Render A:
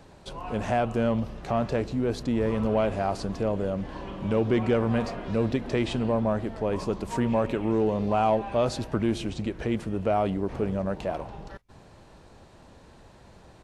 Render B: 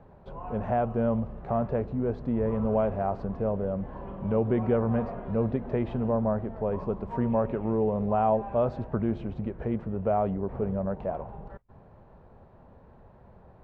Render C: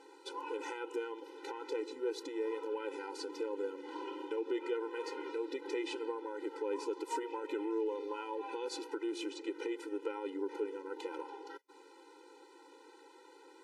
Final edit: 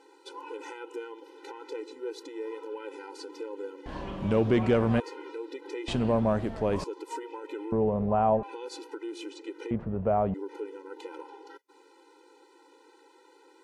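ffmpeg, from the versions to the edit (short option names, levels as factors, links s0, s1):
-filter_complex "[0:a]asplit=2[s0][s1];[1:a]asplit=2[s2][s3];[2:a]asplit=5[s4][s5][s6][s7][s8];[s4]atrim=end=3.862[s9];[s0]atrim=start=3.858:end=5.002[s10];[s5]atrim=start=4.998:end=5.882[s11];[s1]atrim=start=5.878:end=6.842[s12];[s6]atrim=start=6.838:end=7.722[s13];[s2]atrim=start=7.718:end=8.432[s14];[s7]atrim=start=8.428:end=9.712[s15];[s3]atrim=start=9.708:end=10.342[s16];[s8]atrim=start=10.338[s17];[s9][s10]acrossfade=d=0.004:c1=hsin:c2=hsin[s18];[s18][s11]acrossfade=d=0.004:c1=hsin:c2=hsin[s19];[s19][s12]acrossfade=d=0.004:c1=hsin:c2=hsin[s20];[s20][s13]acrossfade=d=0.004:c1=hsin:c2=hsin[s21];[s21][s14]acrossfade=d=0.004:c1=hsin:c2=hsin[s22];[s22][s15]acrossfade=d=0.004:c1=hsin:c2=hsin[s23];[s23][s16]acrossfade=d=0.004:c1=hsin:c2=hsin[s24];[s24][s17]acrossfade=d=0.004:c1=hsin:c2=hsin"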